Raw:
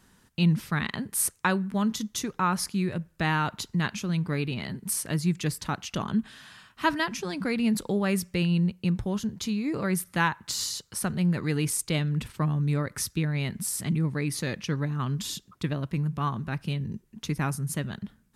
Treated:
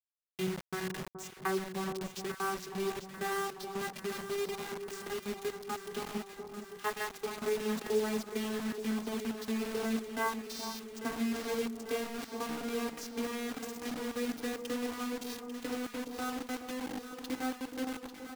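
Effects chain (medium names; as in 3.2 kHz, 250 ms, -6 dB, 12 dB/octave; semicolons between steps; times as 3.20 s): vocoder on a note that slides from F#3, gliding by +6 st; comb 2.5 ms, depth 94%; in parallel at +1.5 dB: compression 10:1, threshold -43 dBFS, peak gain reduction 19 dB; on the sum: bit crusher 6-bit; echo whose repeats swap between lows and highs 422 ms, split 1.1 kHz, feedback 81%, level -8 dB; trim -4.5 dB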